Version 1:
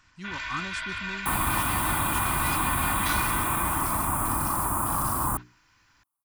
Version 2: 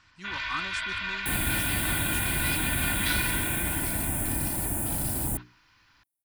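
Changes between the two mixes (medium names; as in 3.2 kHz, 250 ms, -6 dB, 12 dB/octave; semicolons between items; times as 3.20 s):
speech: add high-pass 370 Hz 6 dB/octave; first sound: add resonant low-pass 4.2 kHz, resonance Q 1.5; second sound: add Butterworth band-stop 1.2 kHz, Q 0.8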